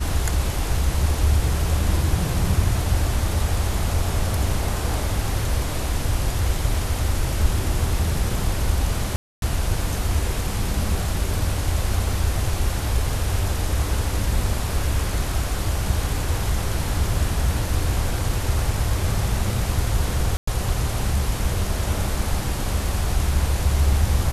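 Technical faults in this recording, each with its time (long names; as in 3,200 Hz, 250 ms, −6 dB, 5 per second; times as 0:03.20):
0:09.16–0:09.42: drop-out 262 ms
0:20.37–0:20.47: drop-out 104 ms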